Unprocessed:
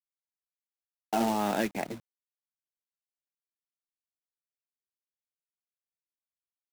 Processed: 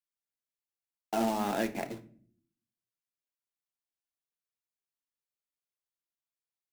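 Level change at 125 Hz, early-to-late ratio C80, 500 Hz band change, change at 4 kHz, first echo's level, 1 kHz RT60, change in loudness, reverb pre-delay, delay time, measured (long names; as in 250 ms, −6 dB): −3.0 dB, 20.5 dB, −1.5 dB, −3.0 dB, no echo audible, 0.40 s, −2.0 dB, 3 ms, no echo audible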